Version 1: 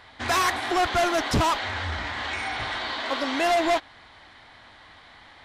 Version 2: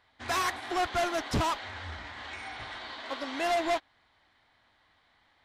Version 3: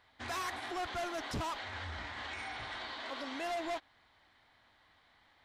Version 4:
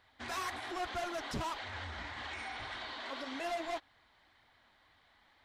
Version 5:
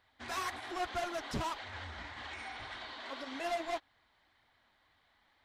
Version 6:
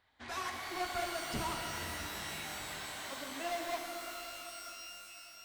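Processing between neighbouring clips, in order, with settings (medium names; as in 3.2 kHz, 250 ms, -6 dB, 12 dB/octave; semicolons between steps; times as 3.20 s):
upward expansion 1.5:1, over -43 dBFS; trim -5.5 dB
peak limiter -33.5 dBFS, peak gain reduction 10 dB
flange 1.8 Hz, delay 0.2 ms, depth 5.5 ms, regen -41%; trim +3.5 dB
upward expansion 1.5:1, over -47 dBFS; trim +2.5 dB
pitch-shifted reverb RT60 3.5 s, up +12 st, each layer -2 dB, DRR 3 dB; trim -2.5 dB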